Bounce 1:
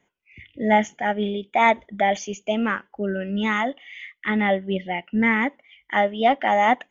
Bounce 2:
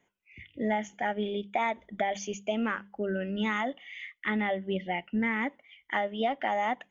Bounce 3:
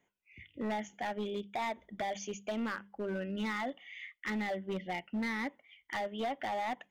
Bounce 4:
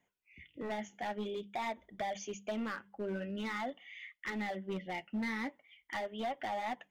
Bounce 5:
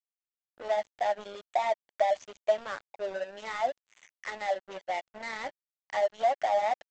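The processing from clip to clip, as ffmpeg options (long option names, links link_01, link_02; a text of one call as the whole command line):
ffmpeg -i in.wav -af "bandreject=frequency=50:width_type=h:width=6,bandreject=frequency=100:width_type=h:width=6,bandreject=frequency=150:width_type=h:width=6,bandreject=frequency=200:width_type=h:width=6,acompressor=threshold=-22dB:ratio=6,volume=-3.5dB" out.wav
ffmpeg -i in.wav -af "asoftclip=type=hard:threshold=-26.5dB,volume=-4.5dB" out.wav
ffmpeg -i in.wav -af "flanger=delay=1:depth=9.2:regen=-50:speed=0.48:shape=triangular,volume=2dB" out.wav
ffmpeg -i in.wav -af "highpass=frequency=620:width_type=q:width=3.8,aresample=16000,aeval=exprs='sgn(val(0))*max(abs(val(0))-0.00596,0)':channel_layout=same,aresample=44100,volume=4dB" out.wav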